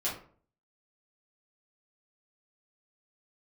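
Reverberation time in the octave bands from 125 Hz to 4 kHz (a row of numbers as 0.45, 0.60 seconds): 0.60, 0.55, 0.50, 0.45, 0.35, 0.25 seconds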